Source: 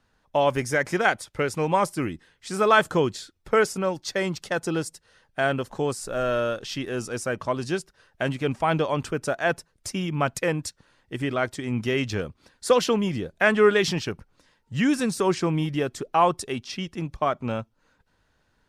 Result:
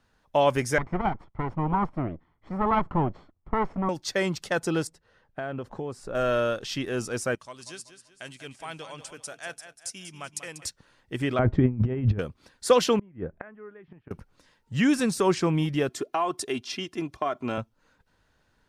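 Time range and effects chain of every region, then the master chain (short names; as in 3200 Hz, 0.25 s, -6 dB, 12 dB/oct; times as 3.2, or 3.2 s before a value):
0.78–3.89 minimum comb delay 0.93 ms + LPF 1000 Hz
4.87–6.15 LPF 1300 Hz 6 dB/oct + compressor 5:1, threshold -29 dBFS
7.35–10.65 steep low-pass 11000 Hz + pre-emphasis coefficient 0.9 + feedback echo 0.191 s, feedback 39%, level -11 dB
11.39–12.19 LPF 2300 Hz + tilt -4.5 dB/oct + negative-ratio compressor -22 dBFS, ratio -0.5
12.99–14.11 LPF 1900 Hz 24 dB/oct + low shelf 280 Hz +3.5 dB + flipped gate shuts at -18 dBFS, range -28 dB
15.89–17.58 HPF 150 Hz + comb 2.9 ms, depth 54% + compressor 4:1, threshold -23 dBFS
whole clip: dry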